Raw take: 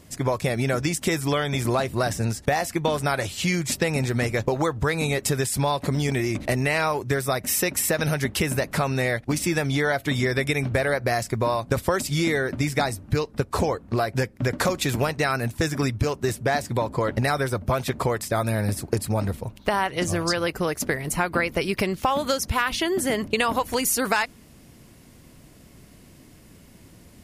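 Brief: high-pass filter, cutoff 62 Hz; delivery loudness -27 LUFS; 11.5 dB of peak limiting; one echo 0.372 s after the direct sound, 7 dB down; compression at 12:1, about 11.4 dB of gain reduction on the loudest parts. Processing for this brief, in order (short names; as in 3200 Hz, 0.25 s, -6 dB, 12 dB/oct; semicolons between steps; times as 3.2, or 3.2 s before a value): HPF 62 Hz; compressor 12:1, threshold -31 dBFS; limiter -29 dBFS; echo 0.372 s -7 dB; gain +11 dB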